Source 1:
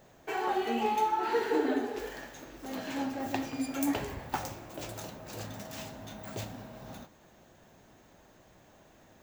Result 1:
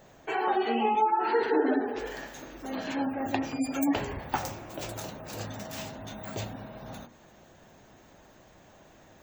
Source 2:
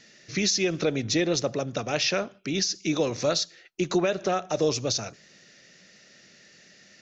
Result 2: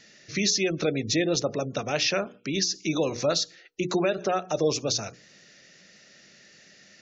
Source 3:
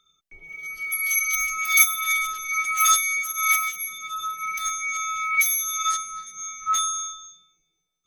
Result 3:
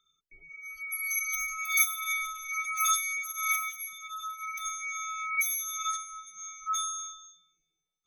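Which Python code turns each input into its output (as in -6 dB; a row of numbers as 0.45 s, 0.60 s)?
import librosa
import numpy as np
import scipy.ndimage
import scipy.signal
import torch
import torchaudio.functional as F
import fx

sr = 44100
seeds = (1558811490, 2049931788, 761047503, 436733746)

y = fx.hum_notches(x, sr, base_hz=60, count=8)
y = fx.spec_gate(y, sr, threshold_db=-30, keep='strong')
y = librosa.util.normalize(y) * 10.0 ** (-12 / 20.0)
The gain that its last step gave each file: +4.0 dB, +0.5 dB, -8.0 dB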